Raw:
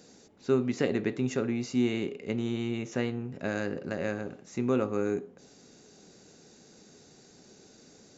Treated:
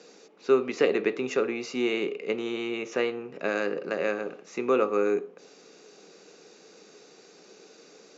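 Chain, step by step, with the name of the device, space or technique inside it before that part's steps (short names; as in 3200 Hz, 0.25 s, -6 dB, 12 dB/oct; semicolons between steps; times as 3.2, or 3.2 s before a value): television speaker (speaker cabinet 210–6500 Hz, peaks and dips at 240 Hz -9 dB, 460 Hz +6 dB, 1200 Hz +7 dB, 2500 Hz +7 dB); gain +3 dB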